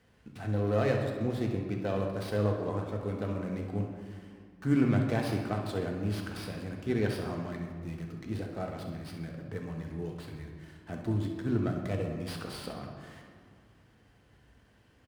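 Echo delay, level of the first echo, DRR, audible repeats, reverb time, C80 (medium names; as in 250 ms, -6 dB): 67 ms, -10.0 dB, 1.0 dB, 1, 2.2 s, 6.0 dB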